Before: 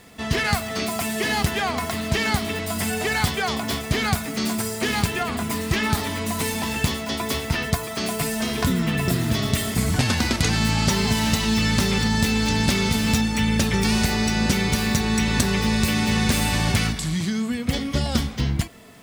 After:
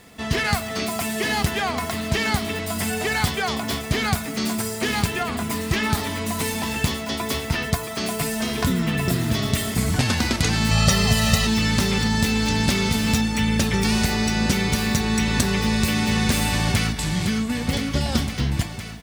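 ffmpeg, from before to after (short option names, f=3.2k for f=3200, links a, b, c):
-filter_complex "[0:a]asettb=1/sr,asplit=3[a][b][c];[a]atrim=end=10.714[d];[b]atrim=start=10.71:end=11.47,asetpts=PTS-STARTPTS,afade=t=in:d=0.004:c=qsin,afade=t=out:st=0.756:d=0.004:c=qsin,aecho=1:1:1.6:1,atrim=end_sample=33516[e];[c]atrim=start=11.466[f];[d][e]acrossfade=d=0.004:c1=hsin:c2=qsin[g];[g][f]acrossfade=d=0.004:c1=qsin:c2=hsin,asplit=2[h][i];[i]afade=t=in:st=16.47:d=0.01,afade=t=out:st=16.98:d=0.01,aecho=0:1:510|1020|1530|2040|2550|3060|3570|4080|4590|5100|5610|6120:0.446684|0.357347|0.285877|0.228702|0.182962|0.146369|0.117095|0.0936763|0.0749411|0.0599529|0.0479623|0.0383698[j];[h][j]amix=inputs=2:normalize=0"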